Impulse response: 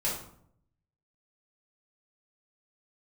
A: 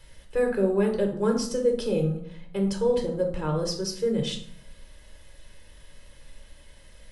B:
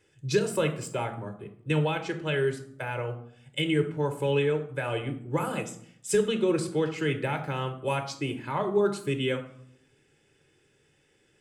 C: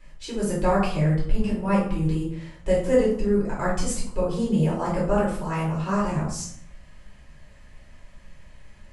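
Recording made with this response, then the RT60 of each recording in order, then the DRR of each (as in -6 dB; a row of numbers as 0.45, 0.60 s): C; 0.65, 0.65, 0.65 s; 2.0, 6.5, -6.5 dB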